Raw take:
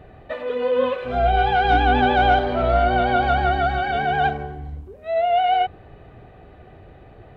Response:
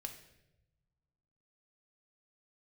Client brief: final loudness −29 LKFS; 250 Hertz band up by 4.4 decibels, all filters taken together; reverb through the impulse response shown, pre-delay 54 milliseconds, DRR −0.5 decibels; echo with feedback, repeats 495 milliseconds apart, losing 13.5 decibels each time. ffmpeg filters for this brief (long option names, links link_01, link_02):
-filter_complex "[0:a]equalizer=frequency=250:width_type=o:gain=5,aecho=1:1:495|990:0.211|0.0444,asplit=2[link_01][link_02];[1:a]atrim=start_sample=2205,adelay=54[link_03];[link_02][link_03]afir=irnorm=-1:irlink=0,volume=3.5dB[link_04];[link_01][link_04]amix=inputs=2:normalize=0,volume=-13dB"